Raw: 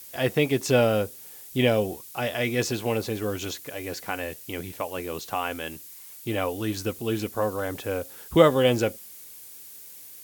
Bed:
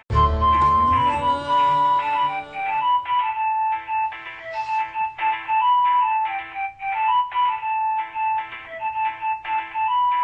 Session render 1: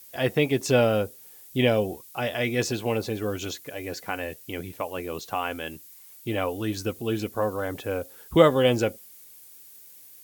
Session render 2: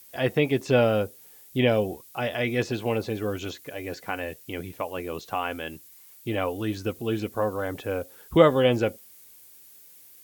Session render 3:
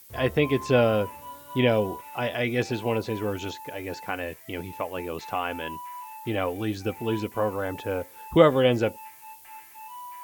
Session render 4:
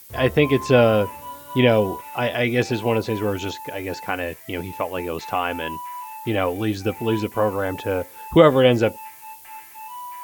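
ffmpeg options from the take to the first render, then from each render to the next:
-af "afftdn=nr=6:nf=-45"
-filter_complex "[0:a]acrossover=split=3800[s0][s1];[s1]acompressor=threshold=0.00562:ratio=4:attack=1:release=60[s2];[s0][s2]amix=inputs=2:normalize=0"
-filter_complex "[1:a]volume=0.0841[s0];[0:a][s0]amix=inputs=2:normalize=0"
-af "volume=1.88,alimiter=limit=0.794:level=0:latency=1"

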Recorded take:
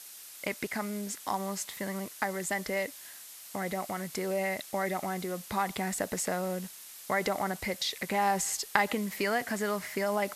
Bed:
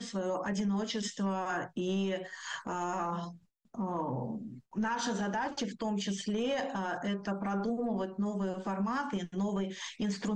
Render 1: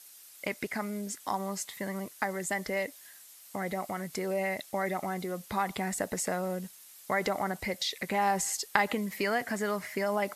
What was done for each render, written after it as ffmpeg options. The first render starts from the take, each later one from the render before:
-af "afftdn=nr=7:nf=-48"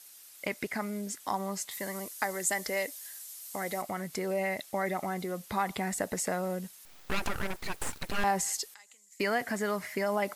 -filter_complex "[0:a]asettb=1/sr,asplit=3[s0][s1][s2];[s0]atrim=end=1.714[s3];[s1]atrim=start=1.71:end=3.82,asetpts=PTS-STARTPTS,afade=t=in:d=0.004:c=qsin,afade=t=out:st=2.106:d=0.004:c=qsin,bass=f=250:g=-7,treble=f=4000:g=8[s4];[s2]atrim=start=3.816[s5];[s3][s4]acrossfade=d=0.004:c1=hsin:c2=qsin[s6];[s6][s5]acrossfade=d=0.004:c1=qsin:c2=hsin,asettb=1/sr,asplit=3[s7][s8][s9];[s7]atrim=end=6.854[s10];[s8]atrim=start=6.85:end=8.24,asetpts=PTS-STARTPTS,afade=t=in:d=0.004:c=qsin,afade=t=out:st=1.386:d=0.004:c=qsin,aeval=exprs='abs(val(0))':c=same[s11];[s9]atrim=start=8.236[s12];[s10][s11]acrossfade=d=0.004:c1=hsin:c2=qsin[s13];[s13][s12]acrossfade=d=0.004:c1=qsin:c2=hsin,asettb=1/sr,asplit=3[s14][s15][s16];[s14]atrim=end=8.744[s17];[s15]atrim=start=8.74:end=9.2,asetpts=PTS-STARTPTS,afade=t=in:d=0.004:c=qsin,afade=t=out:st=0.456:d=0.004:c=qsin,bandpass=f=7200:t=q:w=6.2[s18];[s16]atrim=start=9.196[s19];[s17][s18]acrossfade=d=0.004:c1=hsin:c2=qsin[s20];[s20][s19]acrossfade=d=0.004:c1=qsin:c2=hsin"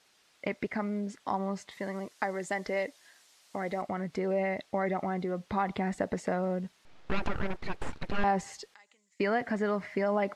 -af "lowpass=3900,tiltshelf=f=970:g=3.5"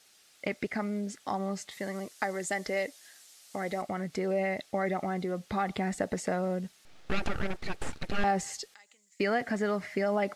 -af "highshelf=f=5200:g=12,bandreject=f=990:w=7.8"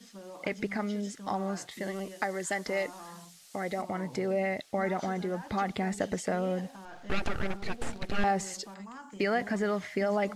-filter_complex "[1:a]volume=0.237[s0];[0:a][s0]amix=inputs=2:normalize=0"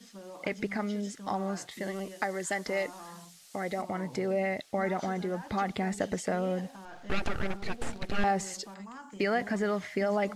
-af anull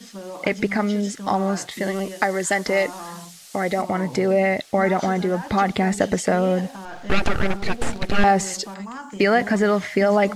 -af "volume=3.55"

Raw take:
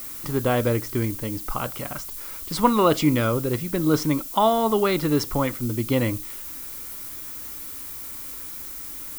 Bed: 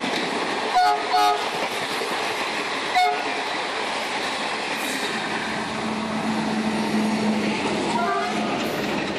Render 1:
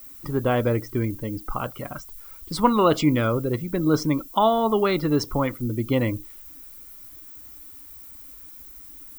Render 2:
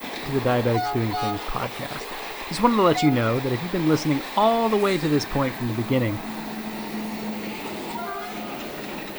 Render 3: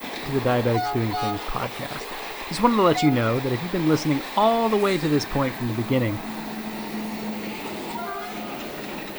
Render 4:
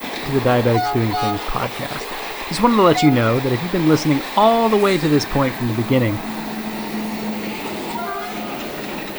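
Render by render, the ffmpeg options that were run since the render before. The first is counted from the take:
-af "afftdn=nr=13:nf=-36"
-filter_complex "[1:a]volume=0.376[s0];[0:a][s0]amix=inputs=2:normalize=0"
-af anull
-af "volume=1.88,alimiter=limit=0.794:level=0:latency=1"

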